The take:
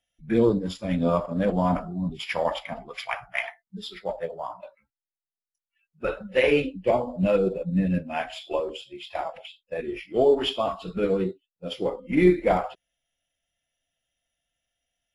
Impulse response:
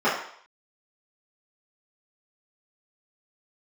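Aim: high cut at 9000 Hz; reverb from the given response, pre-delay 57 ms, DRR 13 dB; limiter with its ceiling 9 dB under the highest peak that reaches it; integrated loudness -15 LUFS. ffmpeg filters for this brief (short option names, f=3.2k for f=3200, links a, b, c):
-filter_complex "[0:a]lowpass=9k,alimiter=limit=-16dB:level=0:latency=1,asplit=2[a][b];[1:a]atrim=start_sample=2205,adelay=57[c];[b][c]afir=irnorm=-1:irlink=0,volume=-31.5dB[d];[a][d]amix=inputs=2:normalize=0,volume=13.5dB"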